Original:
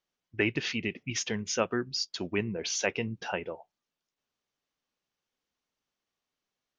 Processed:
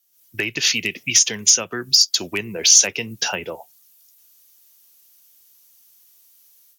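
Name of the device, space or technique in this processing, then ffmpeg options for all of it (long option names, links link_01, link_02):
FM broadcast chain: -filter_complex "[0:a]highpass=71,dynaudnorm=framelen=110:gausssize=3:maxgain=13dB,acrossover=split=120|340[link_01][link_02][link_03];[link_01]acompressor=threshold=-40dB:ratio=4[link_04];[link_02]acompressor=threshold=-33dB:ratio=4[link_05];[link_03]acompressor=threshold=-24dB:ratio=4[link_06];[link_04][link_05][link_06]amix=inputs=3:normalize=0,aemphasis=mode=production:type=75fm,alimiter=limit=-8.5dB:level=0:latency=1:release=294,asoftclip=type=hard:threshold=-11dB,lowpass=frequency=15000:width=0.5412,lowpass=frequency=15000:width=1.3066,aemphasis=mode=production:type=75fm,volume=-1dB"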